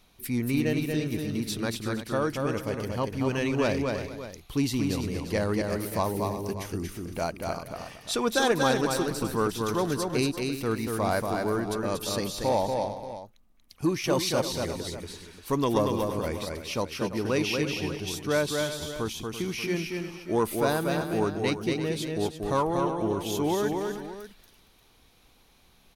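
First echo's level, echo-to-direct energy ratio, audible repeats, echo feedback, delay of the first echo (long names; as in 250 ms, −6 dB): −4.0 dB, −3.0 dB, 4, repeats not evenly spaced, 235 ms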